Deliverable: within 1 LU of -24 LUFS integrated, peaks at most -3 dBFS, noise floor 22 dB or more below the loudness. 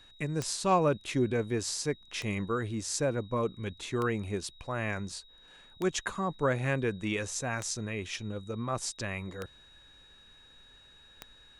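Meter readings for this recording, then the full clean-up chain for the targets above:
clicks found 7; steady tone 3.8 kHz; tone level -56 dBFS; loudness -32.5 LUFS; peak level -14.5 dBFS; loudness target -24.0 LUFS
-> de-click; band-stop 3.8 kHz, Q 30; trim +8.5 dB

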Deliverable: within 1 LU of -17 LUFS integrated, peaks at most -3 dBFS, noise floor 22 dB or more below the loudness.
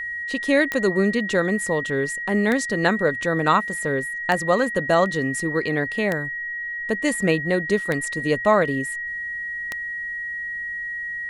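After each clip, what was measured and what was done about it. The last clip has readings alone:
clicks found 6; steady tone 1.9 kHz; tone level -27 dBFS; loudness -22.5 LUFS; peak level -5.0 dBFS; loudness target -17.0 LUFS
-> de-click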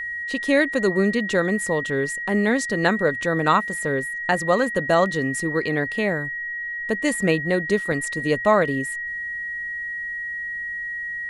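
clicks found 0; steady tone 1.9 kHz; tone level -27 dBFS
-> band-stop 1.9 kHz, Q 30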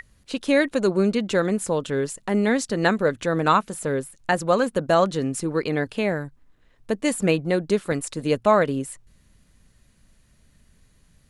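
steady tone not found; loudness -23.0 LUFS; peak level -5.5 dBFS; loudness target -17.0 LUFS
-> trim +6 dB; peak limiter -3 dBFS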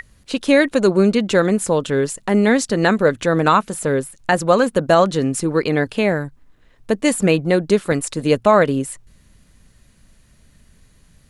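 loudness -17.5 LUFS; peak level -3.0 dBFS; noise floor -54 dBFS

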